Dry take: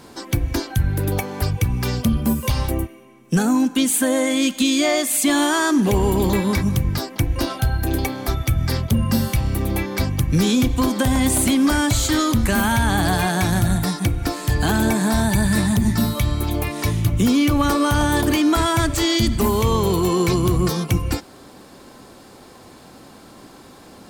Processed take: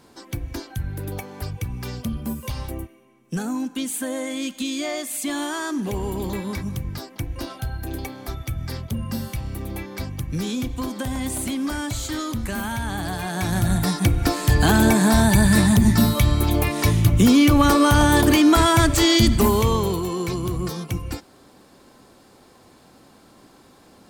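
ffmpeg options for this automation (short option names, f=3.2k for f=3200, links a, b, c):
-af "volume=2.5dB,afade=t=in:st=13.23:d=0.97:silence=0.266073,afade=t=out:st=19.32:d=0.74:silence=0.316228"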